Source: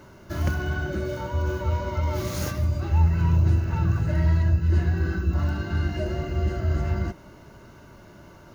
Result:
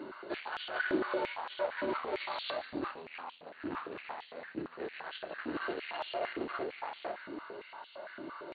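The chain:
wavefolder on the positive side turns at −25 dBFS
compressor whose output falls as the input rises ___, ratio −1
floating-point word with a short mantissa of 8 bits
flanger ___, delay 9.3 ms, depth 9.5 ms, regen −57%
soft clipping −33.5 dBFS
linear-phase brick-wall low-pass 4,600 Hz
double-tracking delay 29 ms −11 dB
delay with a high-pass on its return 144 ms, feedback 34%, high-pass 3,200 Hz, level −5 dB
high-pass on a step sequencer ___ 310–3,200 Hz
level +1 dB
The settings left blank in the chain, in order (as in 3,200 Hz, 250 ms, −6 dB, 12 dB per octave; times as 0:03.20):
−29 dBFS, 1.9 Hz, 8.8 Hz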